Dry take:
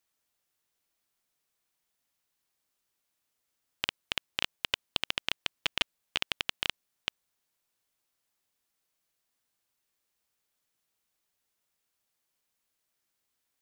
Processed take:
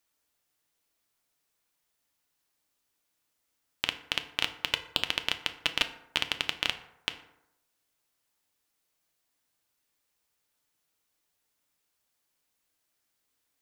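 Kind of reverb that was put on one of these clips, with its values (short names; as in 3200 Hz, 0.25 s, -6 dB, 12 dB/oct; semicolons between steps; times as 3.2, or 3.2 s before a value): FDN reverb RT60 0.83 s, low-frequency decay 0.9×, high-frequency decay 0.5×, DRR 7.5 dB; gain +2 dB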